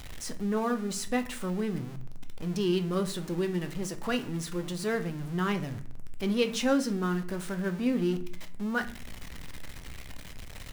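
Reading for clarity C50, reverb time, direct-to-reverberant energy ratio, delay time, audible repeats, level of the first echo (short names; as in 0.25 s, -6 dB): 14.5 dB, 0.50 s, 7.5 dB, none, none, none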